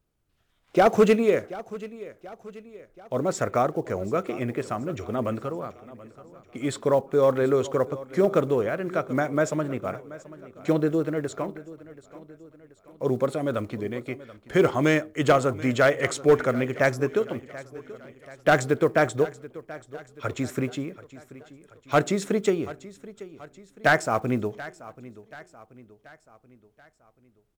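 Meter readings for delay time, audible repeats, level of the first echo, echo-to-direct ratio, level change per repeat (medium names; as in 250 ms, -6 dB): 732 ms, 3, -18.0 dB, -17.0 dB, -6.0 dB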